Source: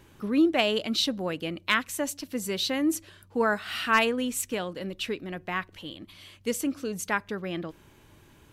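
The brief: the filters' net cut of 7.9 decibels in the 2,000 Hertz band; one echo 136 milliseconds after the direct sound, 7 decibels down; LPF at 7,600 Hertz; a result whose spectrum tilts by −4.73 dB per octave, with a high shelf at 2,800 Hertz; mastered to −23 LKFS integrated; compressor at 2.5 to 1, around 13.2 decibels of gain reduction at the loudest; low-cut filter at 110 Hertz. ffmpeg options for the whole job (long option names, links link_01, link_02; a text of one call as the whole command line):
ffmpeg -i in.wav -af "highpass=110,lowpass=7600,equalizer=frequency=2000:width_type=o:gain=-7,highshelf=frequency=2800:gain=-8.5,acompressor=threshold=-38dB:ratio=2.5,aecho=1:1:136:0.447,volume=15.5dB" out.wav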